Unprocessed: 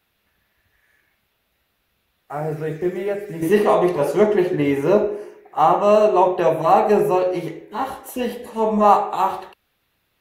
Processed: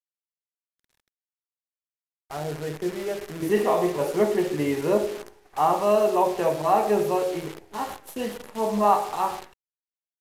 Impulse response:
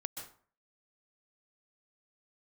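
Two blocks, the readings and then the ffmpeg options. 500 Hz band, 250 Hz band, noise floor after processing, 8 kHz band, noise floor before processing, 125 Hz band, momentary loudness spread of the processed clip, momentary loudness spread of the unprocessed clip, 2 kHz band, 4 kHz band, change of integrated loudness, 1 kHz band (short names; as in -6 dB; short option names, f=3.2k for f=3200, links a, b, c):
-6.0 dB, -6.0 dB, under -85 dBFS, n/a, -69 dBFS, -6.0 dB, 13 LU, 13 LU, -5.0 dB, -2.0 dB, -6.0 dB, -6.0 dB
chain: -af "acrusher=bits=6:dc=4:mix=0:aa=0.000001,aresample=32000,aresample=44100,volume=-6dB"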